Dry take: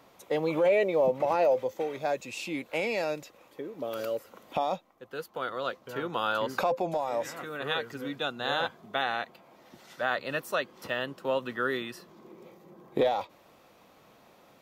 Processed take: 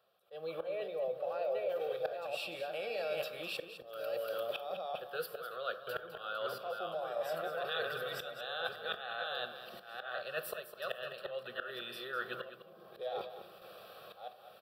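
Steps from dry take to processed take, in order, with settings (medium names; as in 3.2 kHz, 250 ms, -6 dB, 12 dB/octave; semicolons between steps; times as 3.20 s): chunks repeated in reverse 595 ms, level -6 dB; high-pass 370 Hz 6 dB/octave; gate with hold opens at -48 dBFS; slow attack 787 ms; reverse; compression 10:1, threshold -41 dBFS, peak gain reduction 19.5 dB; reverse; static phaser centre 1.4 kHz, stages 8; delay 206 ms -11 dB; on a send at -12 dB: reverberation RT60 0.70 s, pre-delay 13 ms; on the sum: trim +8.5 dB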